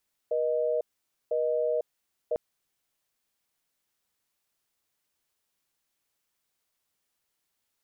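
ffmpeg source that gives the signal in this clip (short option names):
-f lavfi -i "aevalsrc='0.0447*(sin(2*PI*480*t)+sin(2*PI*620*t))*clip(min(mod(t,1),0.5-mod(t,1))/0.005,0,1)':d=2.05:s=44100"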